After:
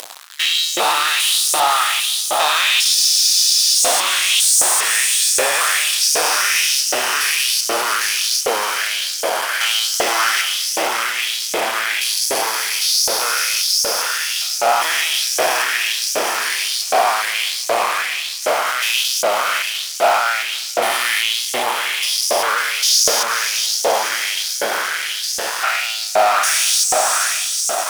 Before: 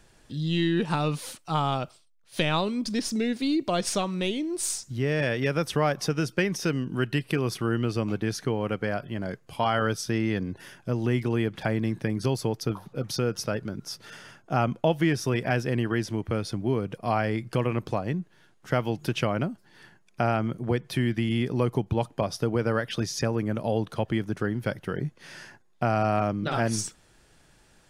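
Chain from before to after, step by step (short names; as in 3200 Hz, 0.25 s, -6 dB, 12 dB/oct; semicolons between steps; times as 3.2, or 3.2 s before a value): stepped spectrum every 0.4 s; pre-emphasis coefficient 0.8; diffused feedback echo 0.531 s, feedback 56%, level -7 dB; in parallel at -7.5 dB: sample-and-hold 17×; on the sum: low shelf 320 Hz -11 dB; fuzz box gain 51 dB, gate -56 dBFS; LFO high-pass saw up 1.3 Hz 560–6500 Hz; reverse; upward compressor, threshold -18 dBFS; reverse; spectral freeze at 2.98, 0.77 s; gain -1 dB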